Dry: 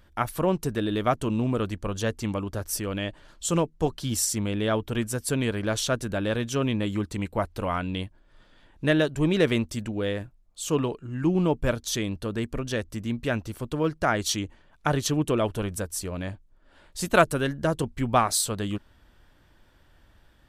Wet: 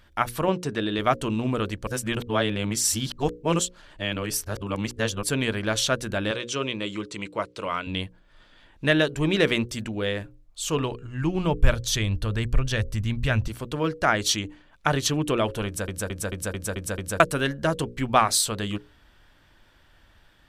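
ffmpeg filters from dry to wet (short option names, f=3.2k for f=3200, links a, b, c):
-filter_complex "[0:a]asettb=1/sr,asplit=3[a][b][c];[a]atrim=end=0.484[d];[b]atrim=start=0.48:end=0.99,asetpts=PTS-STARTPTS,afade=t=in:d=0.004:c=qsin,afade=t=out:st=0.506:d=0.004:c=qsin,highpass=110,lowpass=7.3k[e];[c]atrim=start=0.986[f];[d][e]acrossfade=d=0.004:c1=hsin:c2=qsin[g];[g][f]acrossfade=d=0.004:c1=qsin:c2=hsin,asettb=1/sr,asplit=3[h][i][j];[h]atrim=end=6.314[k];[i]atrim=start=6.31:end=7.87,asetpts=PTS-STARTPTS,afade=t=in:d=0.004:c=qsin,afade=t=out:st=1.556:d=0.004:c=qsin,highpass=190,equalizer=f=240:t=q:w=4:g=-9,equalizer=f=770:t=q:w=4:g=-10,equalizer=f=1.7k:t=q:w=4:g=-6,lowpass=f=8.9k:w=0.5412,lowpass=f=8.9k:w=1.3066[l];[j]atrim=start=7.866[m];[k][l]acrossfade=d=0.004:c1=hsin:c2=qsin[n];[n][m]acrossfade=d=0.004:c1=qsin:c2=hsin,asettb=1/sr,asplit=3[o][p][q];[o]atrim=end=10.124[r];[p]atrim=start=10.12:end=13.48,asetpts=PTS-STARTPTS,afade=t=in:d=0.004:c=qsin,afade=t=out:st=3.356:d=0.004:c=qsin,asubboost=boost=11.5:cutoff=100[s];[q]atrim=start=13.476[t];[r][s]acrossfade=d=0.004:c1=hsin:c2=qsin[u];[u][t]acrossfade=d=0.004:c1=qsin:c2=hsin,asplit=10[v][w][x][y][z][aa][ab][ac][ad][ae];[v]atrim=end=1.872[af];[w]atrim=start=1.868:end=5.232,asetpts=PTS-STARTPTS,areverse[ag];[x]atrim=start=5.228:end=15.882[ah];[y]atrim=start=15.658:end=15.882[ai];[z]atrim=start=15.658:end=15.882[aj];[aa]atrim=start=15.658:end=15.882[ak];[ab]atrim=start=15.658:end=15.882[al];[ac]atrim=start=15.658:end=15.882[am];[ad]atrim=start=15.658:end=15.882[an];[ae]atrim=start=17.198[ao];[af][ag]acrossfade=d=0.004:c1=hsin:c2=hsin[ap];[ap][ah]acrossfade=d=0.004:c1=hsin:c2=hsin[aq];[aq][ai]acrossfade=d=0.004:c1=hsin:c2=hsin[ar];[ar][aj]acrossfade=d=0.004:c1=hsin:c2=hsin[as];[as][ak]acrossfade=d=0.004:c1=hsin:c2=hsin[at];[at][al]acrossfade=d=0.004:c1=hsin:c2=hsin[au];[au][am]acrossfade=d=0.004:c1=hsin:c2=hsin[av];[av][an]acrossfade=d=0.004:c1=hsin:c2=hsin[aw];[aw][ao]acrossfade=d=0.004:c1=hsin:c2=hsin,equalizer=f=2.8k:w=0.45:g=5.5,bandreject=f=60:t=h:w=6,bandreject=f=120:t=h:w=6,bandreject=f=180:t=h:w=6,bandreject=f=240:t=h:w=6,bandreject=f=300:t=h:w=6,bandreject=f=360:t=h:w=6,bandreject=f=420:t=h:w=6,bandreject=f=480:t=h:w=6,bandreject=f=540:t=h:w=6"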